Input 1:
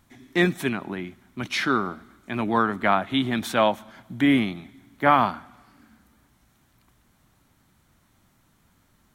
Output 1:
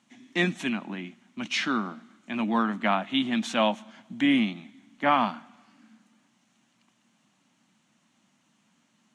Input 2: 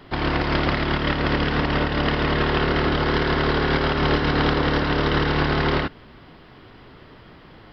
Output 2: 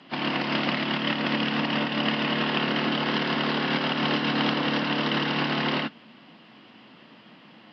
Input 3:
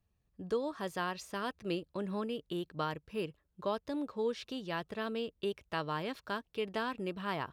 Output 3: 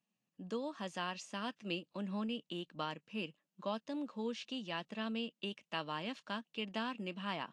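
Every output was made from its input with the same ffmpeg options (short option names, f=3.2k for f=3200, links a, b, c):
-af "highpass=f=170:w=0.5412,highpass=f=170:w=1.3066,equalizer=f=220:t=q:w=4:g=6,equalizer=f=410:t=q:w=4:g=-9,equalizer=f=1.4k:t=q:w=4:g=-3,equalizer=f=2.8k:t=q:w=4:g=8,equalizer=f=6.6k:t=q:w=4:g=5,lowpass=f=8.5k:w=0.5412,lowpass=f=8.5k:w=1.3066,volume=-3.5dB" -ar 32000 -c:a libvorbis -b:a 64k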